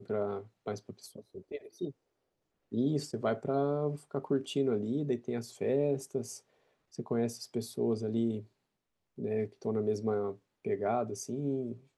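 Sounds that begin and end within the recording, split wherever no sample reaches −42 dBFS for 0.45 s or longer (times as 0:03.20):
0:02.72–0:06.37
0:06.95–0:08.42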